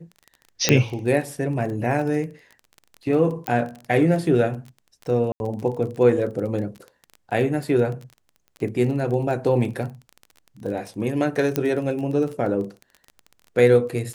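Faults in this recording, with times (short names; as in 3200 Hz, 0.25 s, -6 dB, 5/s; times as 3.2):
crackle 22/s -30 dBFS
0.69 pop -1 dBFS
3.47 pop -8 dBFS
5.32–5.4 gap 81 ms
11.56 pop -7 dBFS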